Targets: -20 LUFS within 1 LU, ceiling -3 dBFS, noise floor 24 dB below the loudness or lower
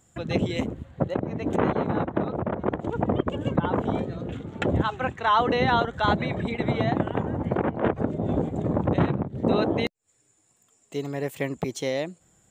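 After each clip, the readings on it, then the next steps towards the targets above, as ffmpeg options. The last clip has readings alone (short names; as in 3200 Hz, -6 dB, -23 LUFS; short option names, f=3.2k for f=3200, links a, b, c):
loudness -26.5 LUFS; peak -10.0 dBFS; loudness target -20.0 LUFS
-> -af "volume=6.5dB"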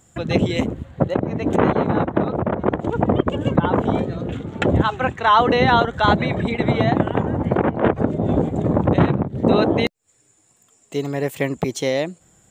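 loudness -20.0 LUFS; peak -3.5 dBFS; noise floor -60 dBFS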